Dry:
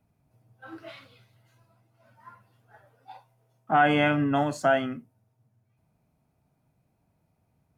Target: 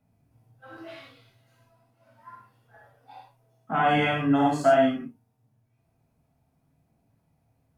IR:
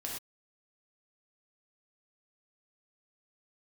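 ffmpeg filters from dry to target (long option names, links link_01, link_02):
-filter_complex "[0:a]aphaser=in_gain=1:out_gain=1:delay=4.3:decay=0.21:speed=0.29:type=triangular[link_01];[1:a]atrim=start_sample=2205[link_02];[link_01][link_02]afir=irnorm=-1:irlink=0"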